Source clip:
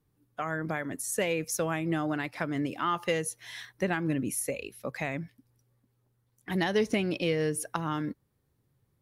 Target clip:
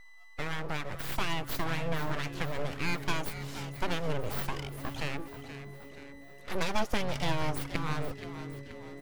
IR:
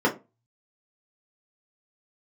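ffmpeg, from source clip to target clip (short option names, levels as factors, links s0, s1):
-filter_complex "[0:a]aeval=exprs='val(0)+0.00398*sin(2*PI*1000*n/s)':c=same,aeval=exprs='abs(val(0))':c=same,asplit=7[s0][s1][s2][s3][s4][s5][s6];[s1]adelay=477,afreqshift=-140,volume=0.266[s7];[s2]adelay=954,afreqshift=-280,volume=0.146[s8];[s3]adelay=1431,afreqshift=-420,volume=0.0804[s9];[s4]adelay=1908,afreqshift=-560,volume=0.0442[s10];[s5]adelay=2385,afreqshift=-700,volume=0.0243[s11];[s6]adelay=2862,afreqshift=-840,volume=0.0133[s12];[s0][s7][s8][s9][s10][s11][s12]amix=inputs=7:normalize=0"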